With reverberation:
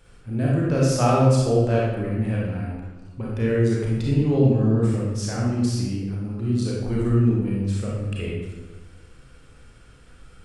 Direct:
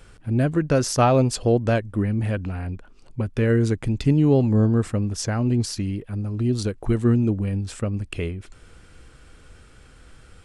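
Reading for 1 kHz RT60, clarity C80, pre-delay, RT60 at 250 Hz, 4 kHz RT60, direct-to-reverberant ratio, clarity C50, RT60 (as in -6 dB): 1.1 s, 2.0 dB, 29 ms, 1.3 s, 0.80 s, -5.0 dB, -1.5 dB, 1.2 s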